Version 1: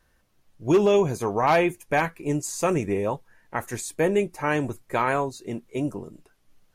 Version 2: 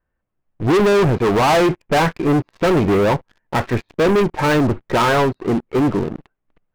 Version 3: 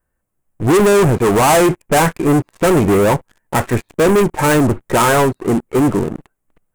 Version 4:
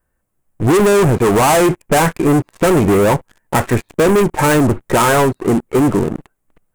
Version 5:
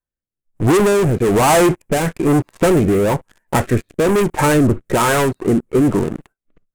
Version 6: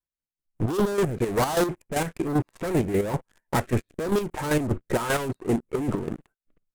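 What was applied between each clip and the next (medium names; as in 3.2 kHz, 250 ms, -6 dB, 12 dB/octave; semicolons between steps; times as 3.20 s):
Bessel low-pass 1.7 kHz, order 8; waveshaping leveller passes 5
resonant high shelf 6.3 kHz +10.5 dB, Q 1.5; trim +3 dB
compression, threshold -13 dBFS, peak gain reduction 4 dB; trim +3 dB
spectral noise reduction 19 dB; rotary cabinet horn 1.1 Hz
hard clipper -12.5 dBFS, distortion -14 dB; square tremolo 5.1 Hz, depth 60%, duty 35%; trim -5.5 dB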